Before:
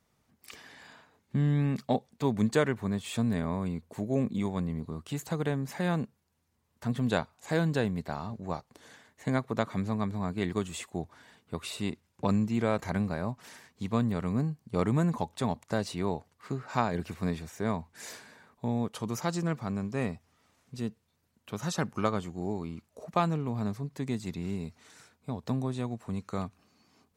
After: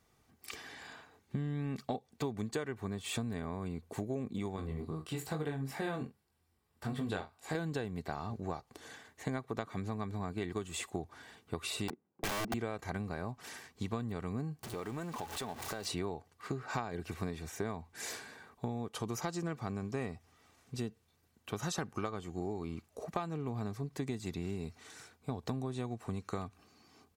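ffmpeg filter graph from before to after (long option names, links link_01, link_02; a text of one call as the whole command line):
ffmpeg -i in.wav -filter_complex "[0:a]asettb=1/sr,asplit=3[link_01][link_02][link_03];[link_01]atrim=end=4.564[link_04];[link_02]atrim=start=4.56:end=7.55,asetpts=PTS-STARTPTS,afade=type=in:duration=0.004:curve=qsin,afade=type=out:start_time=2.986:duration=0.004:curve=qsin,flanger=delay=19:depth=4.1:speed=2.4,bandreject=frequency=6400:width=6.1,asplit=2[link_05][link_06];[link_06]adelay=45,volume=-13dB[link_07];[link_05][link_07]amix=inputs=2:normalize=0,atrim=end_sample=131859[link_08];[link_03]atrim=start=7.546[link_09];[link_04][link_08]acrossfade=duration=0.004:curve1=hsin:curve2=qsin[link_10];[link_10][link_09]acrossfade=duration=0.004:curve1=qsin:curve2=hsin,asettb=1/sr,asplit=3[link_11][link_12][link_13];[link_11]atrim=end=11.884[link_14];[link_12]atrim=start=11.88:end=12.54,asetpts=PTS-STARTPTS,afade=type=in:duration=0.004:curve=qsin,afade=type=out:start_time=0.656:duration=0.004:curve=qsin,highpass=frequency=170:width=0.5412,highpass=frequency=170:width=1.3066,adynamicsmooth=sensitivity=3.5:basefreq=730,aeval=exprs='(mod(22.4*val(0)+1,2)-1)/22.4':channel_layout=same[link_15];[link_13]atrim=start=12.536[link_16];[link_14][link_15]acrossfade=duration=0.004:curve1=hsin:curve2=qsin[link_17];[link_17][link_16]acrossfade=duration=0.004:curve1=qsin:curve2=hsin,asettb=1/sr,asplit=3[link_18][link_19][link_20];[link_18]atrim=end=14.634[link_21];[link_19]atrim=start=14.63:end=15.86,asetpts=PTS-STARTPTS,afade=type=in:duration=0.004:curve=qsin,afade=type=out:start_time=1.226:duration=0.004:curve=qsin,aeval=exprs='val(0)+0.5*0.015*sgn(val(0))':channel_layout=same,lowshelf=frequency=210:gain=-10,acompressor=threshold=-41dB:ratio=3:attack=3.2:release=140:knee=1:detection=peak[link_22];[link_20]atrim=start=15.856[link_23];[link_21][link_22]acrossfade=duration=0.004:curve1=hsin:curve2=qsin[link_24];[link_24][link_23]acrossfade=duration=0.004:curve1=qsin:curve2=hsin,aecho=1:1:2.6:0.33,acompressor=threshold=-35dB:ratio=12,volume=2dB" out.wav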